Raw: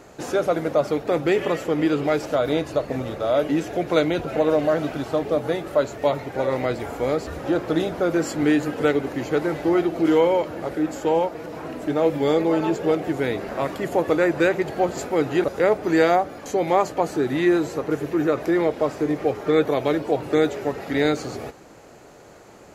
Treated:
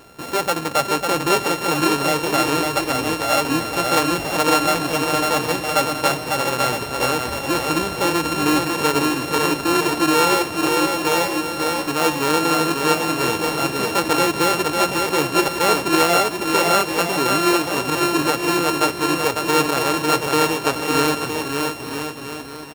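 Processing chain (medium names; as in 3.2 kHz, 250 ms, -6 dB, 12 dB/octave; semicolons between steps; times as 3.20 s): sorted samples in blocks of 32 samples; bouncing-ball echo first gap 550 ms, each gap 0.75×, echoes 5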